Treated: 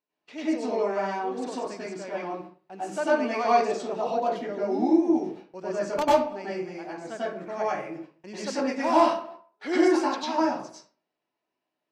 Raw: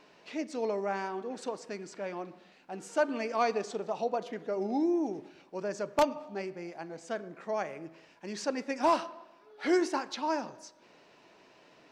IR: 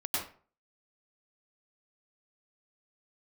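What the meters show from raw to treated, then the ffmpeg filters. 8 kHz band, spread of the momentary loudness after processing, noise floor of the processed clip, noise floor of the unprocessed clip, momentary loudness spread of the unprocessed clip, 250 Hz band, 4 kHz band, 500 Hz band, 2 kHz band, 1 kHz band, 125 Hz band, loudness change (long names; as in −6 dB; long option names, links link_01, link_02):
+3.0 dB, 15 LU, −84 dBFS, −61 dBFS, 16 LU, +7.5 dB, +5.0 dB, +6.0 dB, +5.0 dB, +7.0 dB, +4.0 dB, +6.5 dB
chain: -filter_complex "[0:a]agate=range=-31dB:threshold=-49dB:ratio=16:detection=peak[link_01];[1:a]atrim=start_sample=2205[link_02];[link_01][link_02]afir=irnorm=-1:irlink=0"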